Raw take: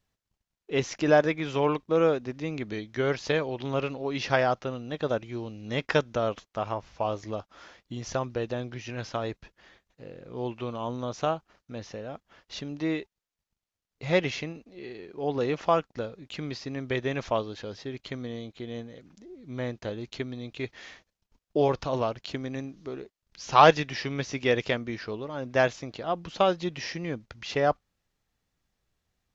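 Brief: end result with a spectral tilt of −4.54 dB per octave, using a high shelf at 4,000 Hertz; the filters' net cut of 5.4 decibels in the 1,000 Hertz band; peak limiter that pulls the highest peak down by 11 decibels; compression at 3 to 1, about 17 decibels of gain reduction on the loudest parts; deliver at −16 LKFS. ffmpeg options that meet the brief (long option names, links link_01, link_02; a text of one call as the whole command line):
ffmpeg -i in.wav -af "equalizer=frequency=1000:width_type=o:gain=-8,highshelf=frequency=4000:gain=8,acompressor=threshold=-38dB:ratio=3,volume=25.5dB,alimiter=limit=-4dB:level=0:latency=1" out.wav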